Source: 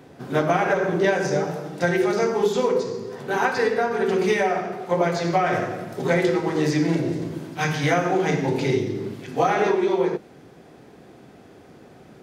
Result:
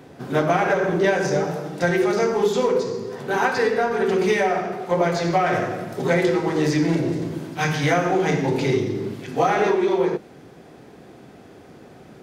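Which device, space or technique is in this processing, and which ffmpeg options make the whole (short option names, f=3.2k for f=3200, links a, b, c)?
parallel distortion: -filter_complex "[0:a]asplit=2[a][b];[b]asoftclip=type=hard:threshold=-25dB,volume=-10dB[c];[a][c]amix=inputs=2:normalize=0"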